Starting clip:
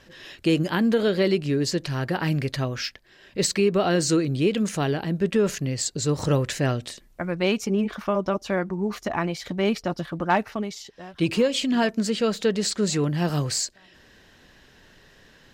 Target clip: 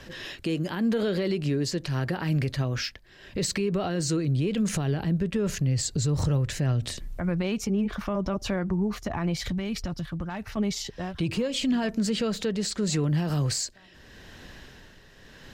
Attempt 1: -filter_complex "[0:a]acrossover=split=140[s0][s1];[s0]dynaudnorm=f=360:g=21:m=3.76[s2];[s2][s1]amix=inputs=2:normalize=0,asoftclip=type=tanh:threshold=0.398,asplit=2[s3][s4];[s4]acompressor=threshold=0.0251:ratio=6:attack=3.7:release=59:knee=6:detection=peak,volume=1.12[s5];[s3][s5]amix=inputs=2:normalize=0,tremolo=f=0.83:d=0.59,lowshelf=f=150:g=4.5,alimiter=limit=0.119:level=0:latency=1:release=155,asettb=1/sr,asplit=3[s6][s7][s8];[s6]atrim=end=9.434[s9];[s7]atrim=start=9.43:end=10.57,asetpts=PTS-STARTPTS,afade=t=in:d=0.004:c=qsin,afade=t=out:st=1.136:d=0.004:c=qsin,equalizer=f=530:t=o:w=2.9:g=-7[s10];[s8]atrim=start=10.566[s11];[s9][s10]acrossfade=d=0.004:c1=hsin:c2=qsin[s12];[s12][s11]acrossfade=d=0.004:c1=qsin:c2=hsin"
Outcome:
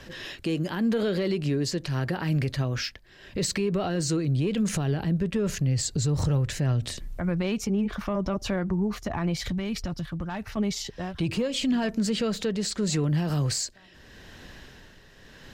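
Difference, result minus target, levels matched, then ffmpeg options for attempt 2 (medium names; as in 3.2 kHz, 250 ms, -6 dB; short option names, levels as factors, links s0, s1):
saturation: distortion +11 dB
-filter_complex "[0:a]acrossover=split=140[s0][s1];[s0]dynaudnorm=f=360:g=21:m=3.76[s2];[s2][s1]amix=inputs=2:normalize=0,asoftclip=type=tanh:threshold=0.794,asplit=2[s3][s4];[s4]acompressor=threshold=0.0251:ratio=6:attack=3.7:release=59:knee=6:detection=peak,volume=1.12[s5];[s3][s5]amix=inputs=2:normalize=0,tremolo=f=0.83:d=0.59,lowshelf=f=150:g=4.5,alimiter=limit=0.119:level=0:latency=1:release=155,asettb=1/sr,asplit=3[s6][s7][s8];[s6]atrim=end=9.434[s9];[s7]atrim=start=9.43:end=10.57,asetpts=PTS-STARTPTS,afade=t=in:d=0.004:c=qsin,afade=t=out:st=1.136:d=0.004:c=qsin,equalizer=f=530:t=o:w=2.9:g=-7[s10];[s8]atrim=start=10.566[s11];[s9][s10]acrossfade=d=0.004:c1=hsin:c2=qsin[s12];[s12][s11]acrossfade=d=0.004:c1=qsin:c2=hsin"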